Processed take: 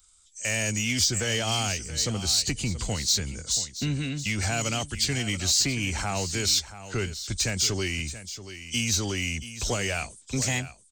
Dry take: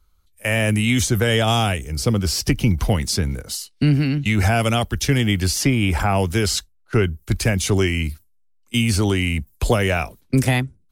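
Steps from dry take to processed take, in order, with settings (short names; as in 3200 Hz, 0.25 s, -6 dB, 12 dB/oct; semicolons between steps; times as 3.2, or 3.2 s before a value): nonlinear frequency compression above 2900 Hz 1.5:1; high shelf 6600 Hz +8.5 dB; in parallel at -4 dB: soft clip -22 dBFS, distortion -8 dB; on the sum: pre-emphasis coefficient 0.8; echo 0.68 s -13.5 dB; mismatched tape noise reduction encoder only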